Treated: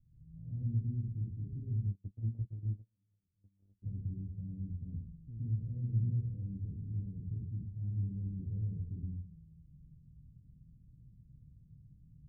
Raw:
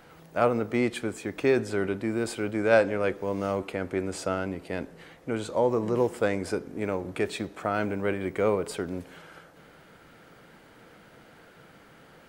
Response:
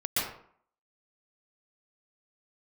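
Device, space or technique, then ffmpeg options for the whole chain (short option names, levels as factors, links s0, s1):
club heard from the street: -filter_complex "[0:a]alimiter=limit=0.106:level=0:latency=1:release=18,lowpass=f=120:w=0.5412,lowpass=f=120:w=1.3066[s0];[1:a]atrim=start_sample=2205[s1];[s0][s1]afir=irnorm=-1:irlink=0,asplit=3[s2][s3][s4];[s2]afade=t=out:st=1.91:d=0.02[s5];[s3]agate=range=0.0112:threshold=0.0251:ratio=16:detection=peak,afade=t=in:st=1.91:d=0.02,afade=t=out:st=3.82:d=0.02[s6];[s4]afade=t=in:st=3.82:d=0.02[s7];[s5][s6][s7]amix=inputs=3:normalize=0"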